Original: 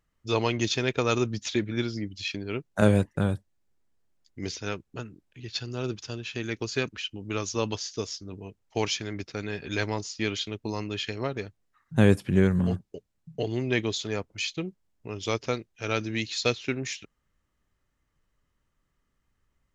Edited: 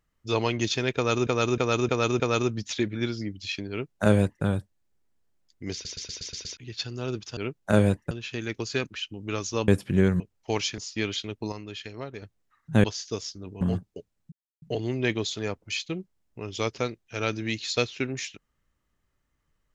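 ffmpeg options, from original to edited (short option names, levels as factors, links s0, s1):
-filter_complex "[0:a]asplit=22[s0][s1][s2][s3][s4][s5][s6][s7][s8][s9][s10][s11][s12][s13][s14][s15][s16][s17][s18][s19][s20][s21];[s0]atrim=end=1.272[s22];[s1]atrim=start=0.958:end=1.272[s23];[s2]atrim=start=0.958:end=1.272[s24];[s3]atrim=start=0.958:end=1.272[s25];[s4]atrim=start=0.958:end=4.612[s26];[s5]atrim=start=4.488:end=4.612[s27];[s6]atrim=start=4.488:end=4.612[s28];[s7]atrim=start=4.488:end=4.612[s29];[s8]atrim=start=4.488:end=4.612[s30];[s9]atrim=start=4.488:end=4.612[s31];[s10]atrim=start=4.488:end=4.612[s32];[s11]atrim=start=5.328:end=6.132[s33];[s12]atrim=start=2.458:end=3.202[s34];[s13]atrim=start=6.128:end=7.702[s35];[s14]atrim=start=12.068:end=12.592[s36];[s15]atrim=start=8.468:end=9.052[s37];[s16]atrim=start=10.008:end=10.752[s38];[s17]atrim=start=10.748:end=11.452,asetpts=PTS-STARTPTS,volume=0.473[s39];[s18]atrim=start=11.448:end=12.072[s40];[s19]atrim=start=7.698:end=8.472[s41];[s20]atrim=start=12.588:end=13.3,asetpts=PTS-STARTPTS,afade=t=out:st=0.708:d=0.004:c=hsin,apad=pad_dur=0.3[s42];[s21]atrim=start=13.3,asetpts=PTS-STARTPTS,afade=t=in:d=0.004:c=hsin[s43];[s22][s23]acrossfade=d=0.004:c1=hsin:c2=hsin[s44];[s44][s24]acrossfade=d=0.004:c1=hsin:c2=hsin[s45];[s45][s25]acrossfade=d=0.004:c1=hsin:c2=hsin[s46];[s46][s26]acrossfade=d=0.004:c1=hsin:c2=hsin[s47];[s47][s27]acrossfade=d=0.004:c1=hsin:c2=hsin[s48];[s48][s28]acrossfade=d=0.004:c1=hsin:c2=hsin[s49];[s49][s29]acrossfade=d=0.004:c1=hsin:c2=hsin[s50];[s50][s30]acrossfade=d=0.004:c1=hsin:c2=hsin[s51];[s51][s31]acrossfade=d=0.004:c1=hsin:c2=hsin[s52];[s52][s32]acrossfade=d=0.004:c1=hsin:c2=hsin[s53];[s53][s33]acrossfade=d=0.004:c1=hsin:c2=hsin[s54];[s54][s34]acrossfade=d=0.004:c1=hsin:c2=hsin[s55];[s55][s35]acrossfade=d=0.004:c1=hsin:c2=hsin[s56];[s56][s36]acrossfade=d=0.004:c1=hsin:c2=hsin[s57];[s57][s37]acrossfade=d=0.004:c1=hsin:c2=hsin[s58];[s58][s38]acrossfade=d=0.004:c1=hsin:c2=hsin[s59];[s59][s39]acrossfade=d=0.004:c1=hsin:c2=hsin[s60];[s60][s40]acrossfade=d=0.004:c1=hsin:c2=hsin[s61];[s61][s41]acrossfade=d=0.004:c1=hsin:c2=hsin[s62];[s42][s43]concat=n=2:v=0:a=1[s63];[s62][s63]acrossfade=d=0.004:c1=hsin:c2=hsin"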